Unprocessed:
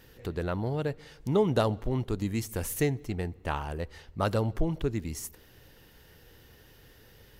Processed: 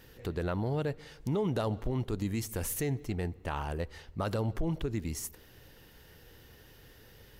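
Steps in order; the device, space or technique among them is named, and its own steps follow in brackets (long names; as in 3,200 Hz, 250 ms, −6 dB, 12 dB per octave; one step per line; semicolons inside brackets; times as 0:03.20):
clipper into limiter (hard clipping −14.5 dBFS, distortion −40 dB; brickwall limiter −22.5 dBFS, peak gain reduction 8 dB)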